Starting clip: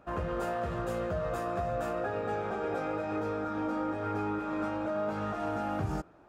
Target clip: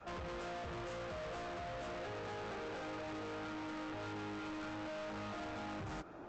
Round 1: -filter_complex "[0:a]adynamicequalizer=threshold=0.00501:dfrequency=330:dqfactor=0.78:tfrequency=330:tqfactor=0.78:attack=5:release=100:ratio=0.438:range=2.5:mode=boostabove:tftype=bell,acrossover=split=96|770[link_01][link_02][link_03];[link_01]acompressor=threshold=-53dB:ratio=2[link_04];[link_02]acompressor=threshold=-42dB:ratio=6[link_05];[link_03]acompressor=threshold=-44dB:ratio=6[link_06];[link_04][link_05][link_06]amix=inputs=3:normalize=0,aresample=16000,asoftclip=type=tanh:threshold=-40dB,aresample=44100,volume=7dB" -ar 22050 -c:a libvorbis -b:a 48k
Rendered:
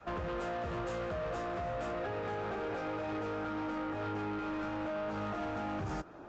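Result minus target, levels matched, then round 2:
soft clipping: distortion −6 dB
-filter_complex "[0:a]adynamicequalizer=threshold=0.00501:dfrequency=330:dqfactor=0.78:tfrequency=330:tqfactor=0.78:attack=5:release=100:ratio=0.438:range=2.5:mode=boostabove:tftype=bell,acrossover=split=96|770[link_01][link_02][link_03];[link_01]acompressor=threshold=-53dB:ratio=2[link_04];[link_02]acompressor=threshold=-42dB:ratio=6[link_05];[link_03]acompressor=threshold=-44dB:ratio=6[link_06];[link_04][link_05][link_06]amix=inputs=3:normalize=0,aresample=16000,asoftclip=type=tanh:threshold=-49.5dB,aresample=44100,volume=7dB" -ar 22050 -c:a libvorbis -b:a 48k

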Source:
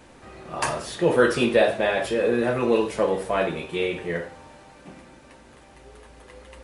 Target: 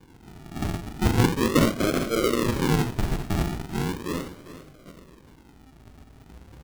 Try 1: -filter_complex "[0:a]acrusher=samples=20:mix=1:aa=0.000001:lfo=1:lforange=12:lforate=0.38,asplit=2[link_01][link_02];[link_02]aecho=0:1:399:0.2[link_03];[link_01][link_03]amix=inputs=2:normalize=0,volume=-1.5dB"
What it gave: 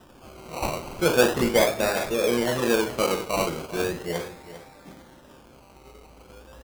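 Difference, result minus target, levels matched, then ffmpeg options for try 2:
sample-and-hold swept by an LFO: distortion −30 dB
-filter_complex "[0:a]acrusher=samples=67:mix=1:aa=0.000001:lfo=1:lforange=40.2:lforate=0.38,asplit=2[link_01][link_02];[link_02]aecho=0:1:399:0.2[link_03];[link_01][link_03]amix=inputs=2:normalize=0,volume=-1.5dB"

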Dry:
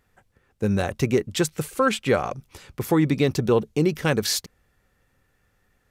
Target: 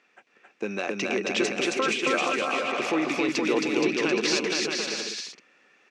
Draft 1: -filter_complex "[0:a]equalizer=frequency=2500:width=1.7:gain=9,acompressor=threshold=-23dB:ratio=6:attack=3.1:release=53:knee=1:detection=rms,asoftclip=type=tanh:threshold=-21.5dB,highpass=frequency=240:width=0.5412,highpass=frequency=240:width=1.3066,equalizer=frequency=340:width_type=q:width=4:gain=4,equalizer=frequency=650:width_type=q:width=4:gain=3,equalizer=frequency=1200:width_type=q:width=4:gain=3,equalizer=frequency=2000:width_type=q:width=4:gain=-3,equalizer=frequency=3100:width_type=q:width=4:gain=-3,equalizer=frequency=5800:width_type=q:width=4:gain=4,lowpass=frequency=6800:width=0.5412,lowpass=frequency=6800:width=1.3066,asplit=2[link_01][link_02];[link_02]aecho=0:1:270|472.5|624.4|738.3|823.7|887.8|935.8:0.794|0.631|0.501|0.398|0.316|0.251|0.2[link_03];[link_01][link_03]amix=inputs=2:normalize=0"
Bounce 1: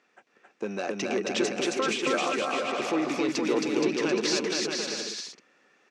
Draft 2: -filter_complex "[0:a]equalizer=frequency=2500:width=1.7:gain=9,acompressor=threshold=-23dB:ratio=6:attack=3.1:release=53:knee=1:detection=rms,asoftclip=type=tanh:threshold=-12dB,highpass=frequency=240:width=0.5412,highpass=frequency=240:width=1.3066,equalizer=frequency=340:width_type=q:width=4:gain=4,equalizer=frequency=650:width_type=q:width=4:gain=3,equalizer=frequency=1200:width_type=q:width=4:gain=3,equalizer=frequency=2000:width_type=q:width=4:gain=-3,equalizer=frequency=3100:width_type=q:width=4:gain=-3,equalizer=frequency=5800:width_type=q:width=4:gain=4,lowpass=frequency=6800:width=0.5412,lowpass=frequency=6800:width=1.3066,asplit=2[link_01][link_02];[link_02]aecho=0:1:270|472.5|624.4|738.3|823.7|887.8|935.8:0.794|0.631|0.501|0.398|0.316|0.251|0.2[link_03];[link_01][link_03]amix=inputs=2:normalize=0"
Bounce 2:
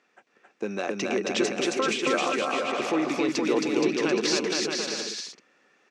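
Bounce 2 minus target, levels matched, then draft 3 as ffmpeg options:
2,000 Hz band −2.5 dB
-filter_complex "[0:a]equalizer=frequency=2500:width=1.7:gain=16,acompressor=threshold=-23dB:ratio=6:attack=3.1:release=53:knee=1:detection=rms,asoftclip=type=tanh:threshold=-12dB,highpass=frequency=240:width=0.5412,highpass=frequency=240:width=1.3066,equalizer=frequency=340:width_type=q:width=4:gain=4,equalizer=frequency=650:width_type=q:width=4:gain=3,equalizer=frequency=1200:width_type=q:width=4:gain=3,equalizer=frequency=2000:width_type=q:width=4:gain=-3,equalizer=frequency=3100:width_type=q:width=4:gain=-3,equalizer=frequency=5800:width_type=q:width=4:gain=4,lowpass=frequency=6800:width=0.5412,lowpass=frequency=6800:width=1.3066,asplit=2[link_01][link_02];[link_02]aecho=0:1:270|472.5|624.4|738.3|823.7|887.8|935.8:0.794|0.631|0.501|0.398|0.316|0.251|0.2[link_03];[link_01][link_03]amix=inputs=2:normalize=0"

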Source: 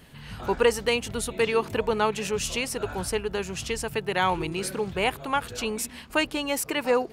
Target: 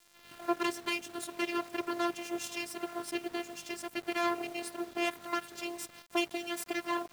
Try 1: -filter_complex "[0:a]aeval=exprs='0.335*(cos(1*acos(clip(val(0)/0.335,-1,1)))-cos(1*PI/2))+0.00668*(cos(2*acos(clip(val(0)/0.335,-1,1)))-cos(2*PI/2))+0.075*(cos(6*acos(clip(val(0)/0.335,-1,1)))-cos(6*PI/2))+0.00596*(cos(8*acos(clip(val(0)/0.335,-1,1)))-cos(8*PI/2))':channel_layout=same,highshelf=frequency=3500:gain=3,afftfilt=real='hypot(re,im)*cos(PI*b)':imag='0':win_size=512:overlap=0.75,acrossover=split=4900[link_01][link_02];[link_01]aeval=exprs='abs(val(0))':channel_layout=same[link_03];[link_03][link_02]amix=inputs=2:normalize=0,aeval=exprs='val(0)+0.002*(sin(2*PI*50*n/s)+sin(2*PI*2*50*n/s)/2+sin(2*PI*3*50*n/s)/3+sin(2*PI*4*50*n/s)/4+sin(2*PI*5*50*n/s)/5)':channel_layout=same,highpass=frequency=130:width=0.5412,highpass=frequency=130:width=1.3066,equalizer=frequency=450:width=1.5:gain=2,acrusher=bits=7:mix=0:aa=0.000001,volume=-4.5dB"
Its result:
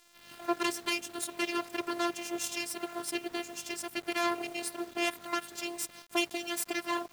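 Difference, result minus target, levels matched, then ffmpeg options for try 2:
8,000 Hz band +4.5 dB
-filter_complex "[0:a]aeval=exprs='0.335*(cos(1*acos(clip(val(0)/0.335,-1,1)))-cos(1*PI/2))+0.00668*(cos(2*acos(clip(val(0)/0.335,-1,1)))-cos(2*PI/2))+0.075*(cos(6*acos(clip(val(0)/0.335,-1,1)))-cos(6*PI/2))+0.00596*(cos(8*acos(clip(val(0)/0.335,-1,1)))-cos(8*PI/2))':channel_layout=same,highshelf=frequency=3500:gain=-4.5,afftfilt=real='hypot(re,im)*cos(PI*b)':imag='0':win_size=512:overlap=0.75,acrossover=split=4900[link_01][link_02];[link_01]aeval=exprs='abs(val(0))':channel_layout=same[link_03];[link_03][link_02]amix=inputs=2:normalize=0,aeval=exprs='val(0)+0.002*(sin(2*PI*50*n/s)+sin(2*PI*2*50*n/s)/2+sin(2*PI*3*50*n/s)/3+sin(2*PI*4*50*n/s)/4+sin(2*PI*5*50*n/s)/5)':channel_layout=same,highpass=frequency=130:width=0.5412,highpass=frequency=130:width=1.3066,equalizer=frequency=450:width=1.5:gain=2,acrusher=bits=7:mix=0:aa=0.000001,volume=-4.5dB"

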